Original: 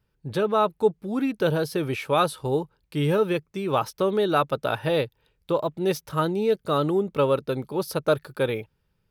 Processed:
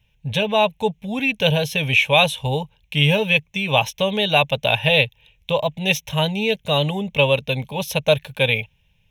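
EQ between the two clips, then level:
low-shelf EQ 200 Hz +4.5 dB
flat-topped bell 3,900 Hz +15 dB
phaser with its sweep stopped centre 1,300 Hz, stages 6
+6.5 dB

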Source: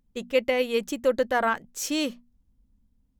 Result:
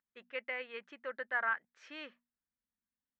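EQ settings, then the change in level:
resonant band-pass 1,700 Hz, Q 2.8
high-frequency loss of the air 220 metres
−1.5 dB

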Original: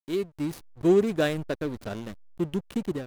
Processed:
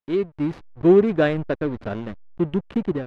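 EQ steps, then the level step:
low-pass filter 2,400 Hz 12 dB per octave
+6.0 dB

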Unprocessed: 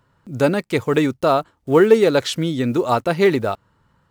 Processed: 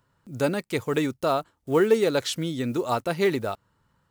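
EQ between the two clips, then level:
high-shelf EQ 5,100 Hz +7.5 dB
−7.5 dB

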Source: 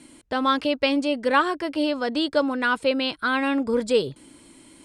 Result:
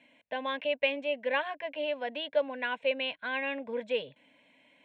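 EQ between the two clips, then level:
loudspeaker in its box 400–3,800 Hz, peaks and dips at 420 Hz −5 dB, 830 Hz −10 dB, 1,200 Hz −8 dB, 1,900 Hz −3 dB, 3,200 Hz −4 dB
phaser with its sweep stopped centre 1,300 Hz, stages 6
0.0 dB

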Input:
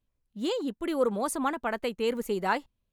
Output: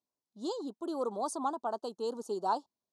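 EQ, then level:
Chebyshev band-stop filter 940–4,800 Hz, order 2
loudspeaker in its box 380–8,400 Hz, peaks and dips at 510 Hz −8 dB, 2,100 Hz −7 dB, 7,400 Hz −5 dB
0.0 dB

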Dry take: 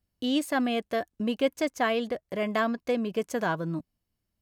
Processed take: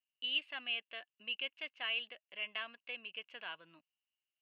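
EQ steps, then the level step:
resonant band-pass 2,800 Hz, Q 13
high-frequency loss of the air 430 metres
spectral tilt +1.5 dB per octave
+12.5 dB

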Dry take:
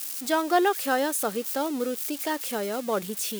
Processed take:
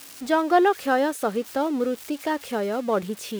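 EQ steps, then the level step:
low-pass filter 2,000 Hz 6 dB per octave
parametric band 62 Hz +6 dB 1.4 octaves
+4.0 dB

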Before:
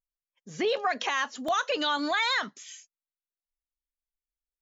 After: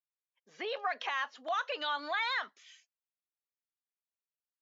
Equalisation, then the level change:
band-pass filter 620–4,700 Hz
high-frequency loss of the air 96 metres
−4.5 dB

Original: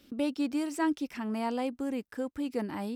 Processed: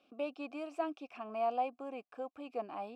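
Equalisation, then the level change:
formant filter a
+7.5 dB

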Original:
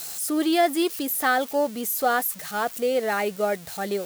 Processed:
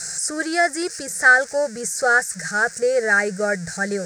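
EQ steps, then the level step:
drawn EQ curve 120 Hz 0 dB, 170 Hz +8 dB, 260 Hz −18 dB, 470 Hz −2 dB, 1,100 Hz −14 dB, 1,600 Hz +9 dB, 3,200 Hz −22 dB, 5,200 Hz +3 dB, 8,400 Hz +3 dB, 13,000 Hz −30 dB
+7.5 dB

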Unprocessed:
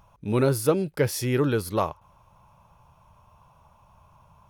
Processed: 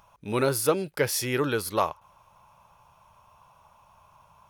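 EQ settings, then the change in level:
low-shelf EQ 410 Hz −12 dB
+3.5 dB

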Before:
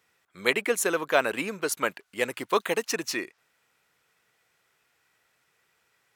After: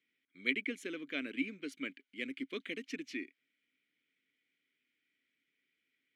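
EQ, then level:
formant filter i
+1.5 dB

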